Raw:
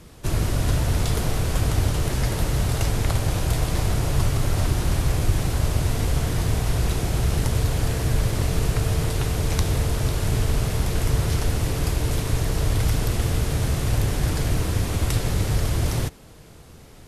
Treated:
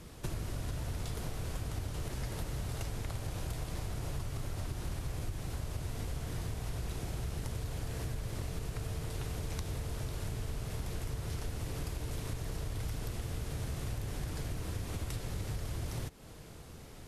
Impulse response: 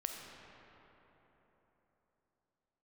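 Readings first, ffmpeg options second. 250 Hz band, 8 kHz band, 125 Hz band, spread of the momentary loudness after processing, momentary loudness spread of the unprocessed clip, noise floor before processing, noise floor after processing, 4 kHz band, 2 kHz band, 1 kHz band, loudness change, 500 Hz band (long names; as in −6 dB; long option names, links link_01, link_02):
−15.5 dB, −15.5 dB, −16.0 dB, 1 LU, 2 LU, −45 dBFS, −49 dBFS, −15.5 dB, −15.5 dB, −15.5 dB, −16.0 dB, −15.5 dB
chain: -af "acompressor=threshold=-31dB:ratio=6,volume=-4dB"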